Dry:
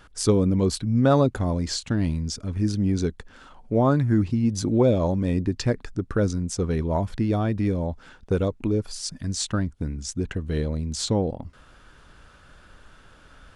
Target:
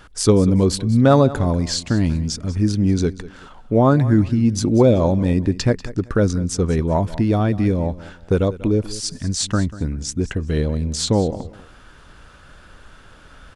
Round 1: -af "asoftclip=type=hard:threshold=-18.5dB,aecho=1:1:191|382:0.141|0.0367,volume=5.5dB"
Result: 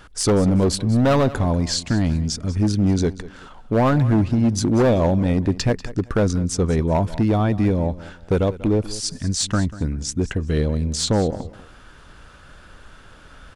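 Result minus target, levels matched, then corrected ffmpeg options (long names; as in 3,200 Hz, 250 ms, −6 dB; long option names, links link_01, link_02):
hard clipping: distortion +36 dB
-af "asoftclip=type=hard:threshold=-8dB,aecho=1:1:191|382:0.141|0.0367,volume=5.5dB"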